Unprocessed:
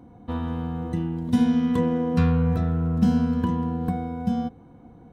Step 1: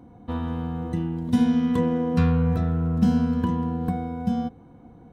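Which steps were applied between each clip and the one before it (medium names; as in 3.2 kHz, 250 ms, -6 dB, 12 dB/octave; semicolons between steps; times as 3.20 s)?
no audible change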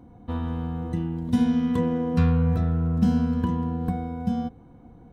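bass shelf 61 Hz +9.5 dB; trim -2 dB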